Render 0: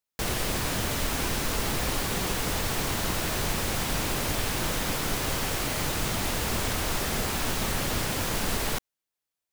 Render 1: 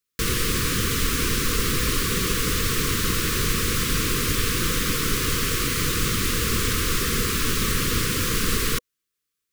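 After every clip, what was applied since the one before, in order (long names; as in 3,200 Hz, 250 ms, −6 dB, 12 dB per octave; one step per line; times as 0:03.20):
elliptic band-stop filter 490–1,100 Hz, stop band 40 dB
level +6 dB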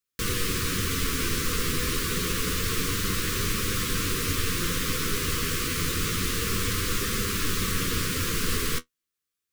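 flanger 0.28 Hz, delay 9.7 ms, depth 2.8 ms, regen +44%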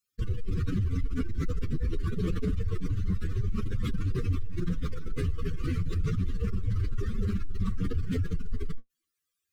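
expanding power law on the bin magnitudes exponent 2.8
highs frequency-modulated by the lows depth 0.12 ms
level +1.5 dB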